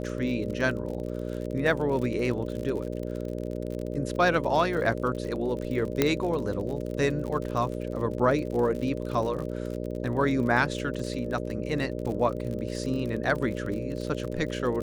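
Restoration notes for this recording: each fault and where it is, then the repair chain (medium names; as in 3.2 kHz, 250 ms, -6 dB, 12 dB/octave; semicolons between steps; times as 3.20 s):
buzz 60 Hz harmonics 10 -33 dBFS
crackle 50 per s -33 dBFS
6.02 s: pop -7 dBFS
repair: de-click; de-hum 60 Hz, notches 10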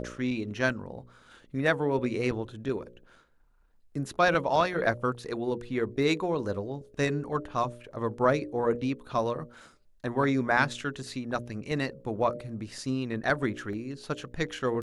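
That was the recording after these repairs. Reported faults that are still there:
6.02 s: pop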